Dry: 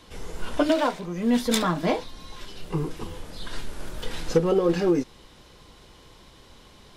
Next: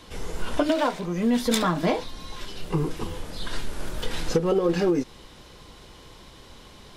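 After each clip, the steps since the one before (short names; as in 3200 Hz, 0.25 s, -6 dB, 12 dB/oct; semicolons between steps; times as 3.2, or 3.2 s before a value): compressor 5:1, threshold -22 dBFS, peak gain reduction 7.5 dB; gain +3.5 dB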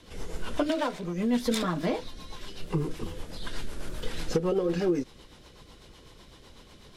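rotary speaker horn 8 Hz; gain -2.5 dB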